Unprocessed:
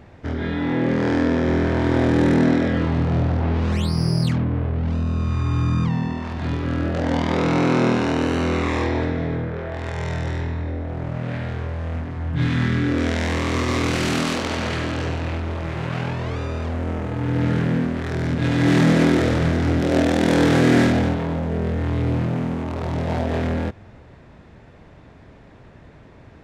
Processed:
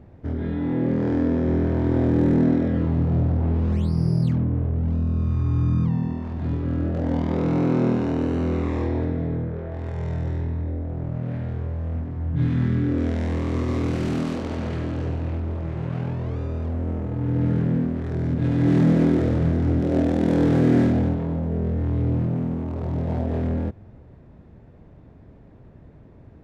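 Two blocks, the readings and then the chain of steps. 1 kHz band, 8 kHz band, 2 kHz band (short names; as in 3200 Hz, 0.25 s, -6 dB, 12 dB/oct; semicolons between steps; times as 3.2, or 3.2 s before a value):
-8.5 dB, under -15 dB, -13.0 dB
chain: tilt shelf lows +8 dB, about 840 Hz; gain -8 dB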